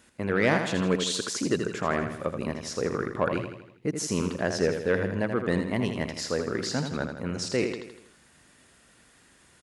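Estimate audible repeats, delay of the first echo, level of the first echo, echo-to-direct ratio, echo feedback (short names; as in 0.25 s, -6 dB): 5, 81 ms, -7.0 dB, -5.5 dB, 51%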